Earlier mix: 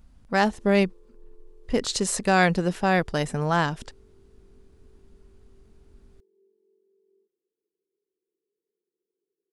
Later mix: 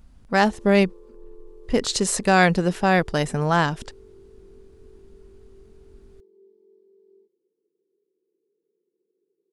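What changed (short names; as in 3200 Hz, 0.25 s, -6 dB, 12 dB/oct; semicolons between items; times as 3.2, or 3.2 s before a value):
speech +3.0 dB; background +10.5 dB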